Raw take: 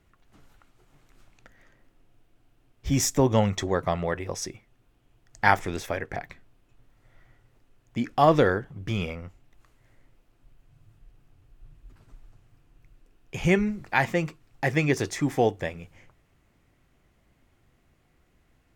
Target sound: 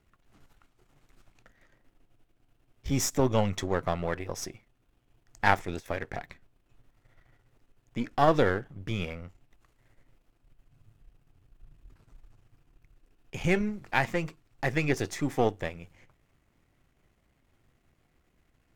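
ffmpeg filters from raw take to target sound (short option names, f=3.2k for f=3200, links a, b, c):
-filter_complex "[0:a]aeval=exprs='if(lt(val(0),0),0.447*val(0),val(0))':c=same,asettb=1/sr,asplit=3[a][b][c];[a]atrim=end=5.464[d];[b]atrim=start=5.46:end=5.86,asetpts=PTS-STARTPTS,afade=t=in:d=0.004:c=qsin,afade=t=out:st=0.396:d=0.004:c=qsin,agate=range=-14dB:threshold=-31dB:ratio=16:detection=peak[e];[c]atrim=start=5.856[f];[d][e]acrossfade=d=0.004:c1=hsin:c2=qsin[g];[g][f]acrossfade=d=0.004:c1=qsin:c2=hsin,volume=-1.5dB"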